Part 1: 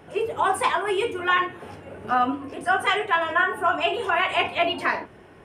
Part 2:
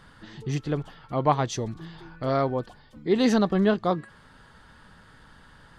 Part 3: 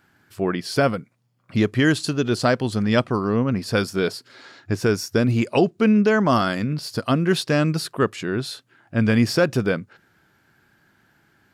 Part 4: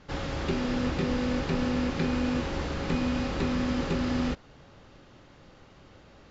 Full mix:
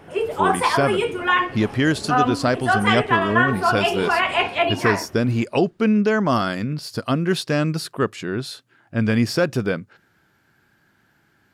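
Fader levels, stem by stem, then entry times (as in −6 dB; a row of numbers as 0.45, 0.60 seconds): +2.5, −19.0, −1.0, −16.5 decibels; 0.00, 0.35, 0.00, 0.10 seconds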